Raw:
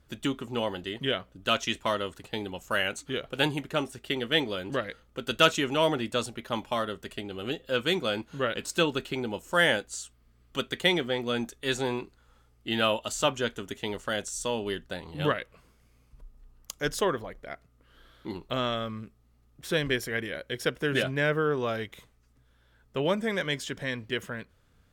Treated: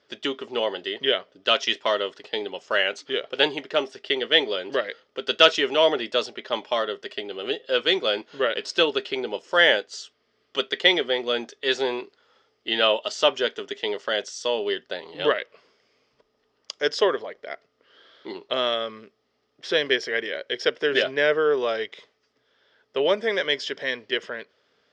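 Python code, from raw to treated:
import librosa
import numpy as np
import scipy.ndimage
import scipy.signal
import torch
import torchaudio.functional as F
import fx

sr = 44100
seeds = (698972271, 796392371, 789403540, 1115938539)

y = fx.cabinet(x, sr, low_hz=360.0, low_slope=12, high_hz=5600.0, hz=(420.0, 610.0, 1900.0, 3200.0, 5100.0), db=(8, 5, 5, 6, 10))
y = y * 10.0 ** (2.0 / 20.0)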